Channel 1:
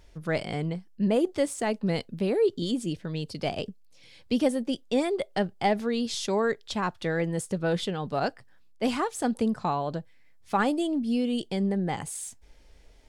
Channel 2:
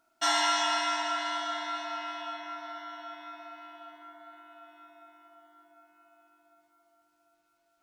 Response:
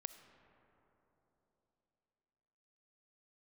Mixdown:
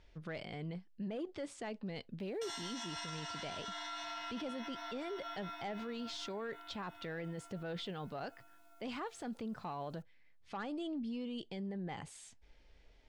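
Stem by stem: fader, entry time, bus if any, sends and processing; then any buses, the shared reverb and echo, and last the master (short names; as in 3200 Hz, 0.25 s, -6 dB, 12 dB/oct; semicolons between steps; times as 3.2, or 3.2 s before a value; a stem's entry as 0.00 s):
-8.5 dB, 0.00 s, no send, LPF 3000 Hz 12 dB/oct
-3.5 dB, 2.20 s, no send, compressor 6:1, threshold -38 dBFS, peak gain reduction 14 dB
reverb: off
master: high shelf 2600 Hz +10.5 dB; soft clip -24.5 dBFS, distortion -21 dB; limiter -35 dBFS, peak gain reduction 10 dB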